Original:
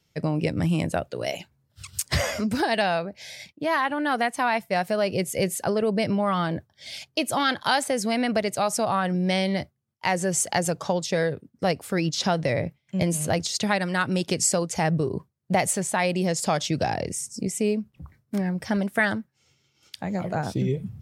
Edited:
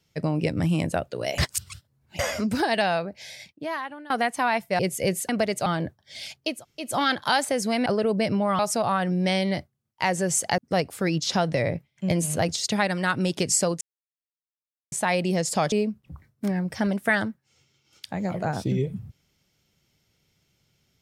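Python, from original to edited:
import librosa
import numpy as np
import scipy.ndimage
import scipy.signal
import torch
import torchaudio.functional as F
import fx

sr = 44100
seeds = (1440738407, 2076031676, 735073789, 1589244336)

y = fx.edit(x, sr, fx.reverse_span(start_s=1.38, length_s=0.81),
    fx.fade_out_to(start_s=3.2, length_s=0.9, floor_db=-21.5),
    fx.cut(start_s=4.79, length_s=0.35),
    fx.swap(start_s=5.64, length_s=0.73, other_s=8.25, other_length_s=0.37),
    fx.insert_room_tone(at_s=7.24, length_s=0.32, crossfade_s=0.24),
    fx.cut(start_s=10.61, length_s=0.88),
    fx.silence(start_s=14.72, length_s=1.11),
    fx.cut(start_s=16.63, length_s=0.99), tone=tone)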